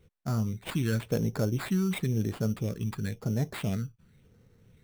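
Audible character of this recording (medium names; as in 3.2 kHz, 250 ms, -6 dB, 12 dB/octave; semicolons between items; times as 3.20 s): phasing stages 12, 0.95 Hz, lowest notch 600–3100 Hz; aliases and images of a low sample rate 5.9 kHz, jitter 0%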